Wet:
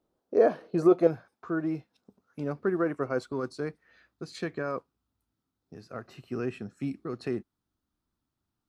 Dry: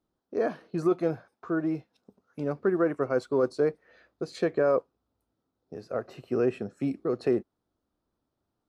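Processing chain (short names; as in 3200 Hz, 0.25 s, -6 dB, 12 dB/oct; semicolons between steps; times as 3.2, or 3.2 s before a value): bell 530 Hz +7.5 dB 1.3 oct, from 1.07 s -4 dB, from 3.32 s -12 dB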